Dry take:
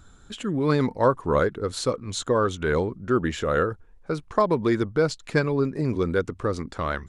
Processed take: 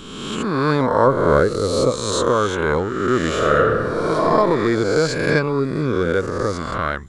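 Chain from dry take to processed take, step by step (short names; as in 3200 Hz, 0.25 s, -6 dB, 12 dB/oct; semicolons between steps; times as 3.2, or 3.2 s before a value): spectral swells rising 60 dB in 1.42 s; 1.07–1.91 tilt shelf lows +3.5 dB; 3.34–4.24 reverb throw, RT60 1.7 s, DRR -1 dB; gain +2 dB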